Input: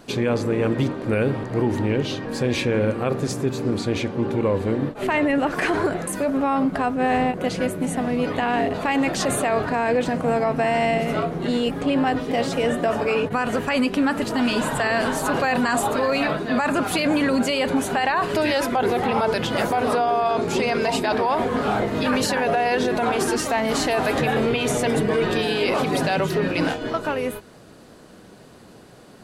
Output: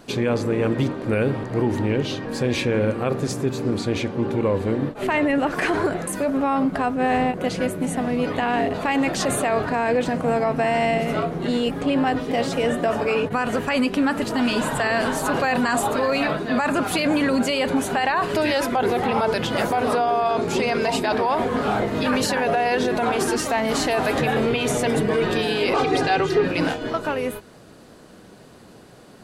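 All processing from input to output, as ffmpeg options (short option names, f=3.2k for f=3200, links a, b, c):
-filter_complex "[0:a]asettb=1/sr,asplit=3[a][b][c];[a]atrim=end=25.734[d];[b]atrim=start=25.73:end=26.45,asetpts=PTS-STARTPTS,afade=t=in:d=0.004:c=qsin,afade=t=out:st=0.716:d=0.004:c=qsin,lowpass=6.5k,aecho=1:1:2.5:0.79,atrim=end_sample=31752[e];[c]atrim=start=26.446[f];[d][e]acrossfade=d=0.004:c1=hsin:c2=qsin[g];[g][f]acrossfade=d=0.004:c1=qsin:c2=hsin"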